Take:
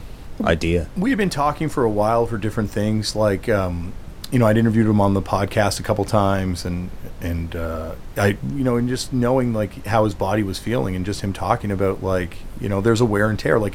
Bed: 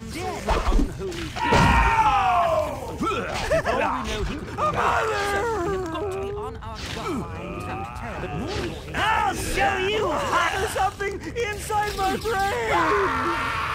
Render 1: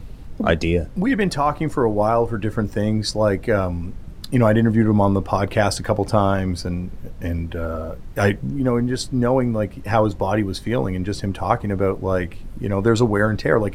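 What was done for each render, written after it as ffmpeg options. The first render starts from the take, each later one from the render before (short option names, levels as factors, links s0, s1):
-af "afftdn=nr=8:nf=-35"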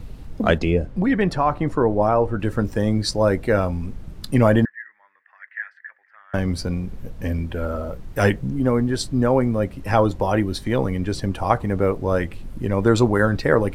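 -filter_complex "[0:a]asettb=1/sr,asplit=3[s0][s1][s2];[s0]atrim=end=0.584[s3];[s1]atrim=start=0.58:end=2.4,asetpts=PTS-STARTPTS,afade=t=in:d=0.004:c=qsin,afade=t=out:st=1.816:d=0.004:c=qsin,lowpass=f=2600:p=1[s4];[s2]atrim=start=2.396[s5];[s3][s4]acrossfade=d=0.004:c1=hsin:c2=qsin[s6];[s6][s5]acrossfade=d=0.004:c1=qsin:c2=hsin,asettb=1/sr,asplit=3[s7][s8][s9];[s7]atrim=end=4.654[s10];[s8]atrim=start=4.65:end=6.34,asetpts=PTS-STARTPTS,afade=t=in:d=0.004:c=qsin,afade=t=out:st=1.686:d=0.004:c=qsin,asuperpass=centerf=1800:order=4:qfactor=5.5[s11];[s9]atrim=start=6.336[s12];[s10][s11]acrossfade=d=0.004:c1=hsin:c2=qsin[s13];[s13][s12]acrossfade=d=0.004:c1=qsin:c2=hsin"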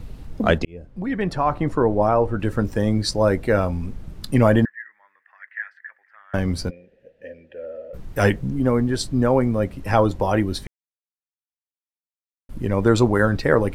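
-filter_complex "[0:a]asplit=3[s0][s1][s2];[s0]afade=t=out:st=6.69:d=0.02[s3];[s1]asplit=3[s4][s5][s6];[s4]bandpass=f=530:t=q:w=8,volume=1[s7];[s5]bandpass=f=1840:t=q:w=8,volume=0.501[s8];[s6]bandpass=f=2480:t=q:w=8,volume=0.355[s9];[s7][s8][s9]amix=inputs=3:normalize=0,afade=t=in:st=6.69:d=0.02,afade=t=out:st=7.93:d=0.02[s10];[s2]afade=t=in:st=7.93:d=0.02[s11];[s3][s10][s11]amix=inputs=3:normalize=0,asplit=4[s12][s13][s14][s15];[s12]atrim=end=0.65,asetpts=PTS-STARTPTS,afade=t=out:st=0.646:d=0.004:c=hsin[s16];[s13]atrim=start=0.65:end=10.67,asetpts=PTS-STARTPTS,afade=t=in:d=0.9,afade=t=out:st=10.016:d=0.004:c=hsin[s17];[s14]atrim=start=10.67:end=12.49,asetpts=PTS-STARTPTS,volume=0[s18];[s15]atrim=start=12.49,asetpts=PTS-STARTPTS,afade=t=in:d=0.004:c=hsin[s19];[s16][s17][s18][s19]concat=n=4:v=0:a=1"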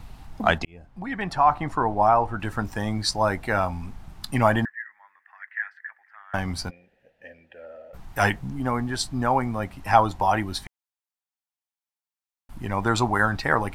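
-af "lowshelf=f=630:t=q:w=3:g=-6.5"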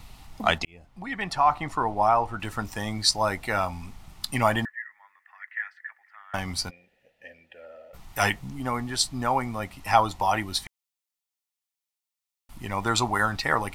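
-af "tiltshelf=f=1400:g=-5,bandreject=f=1600:w=7.4"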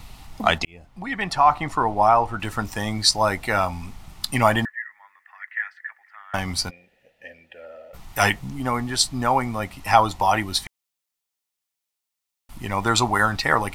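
-af "volume=1.68,alimiter=limit=0.708:level=0:latency=1"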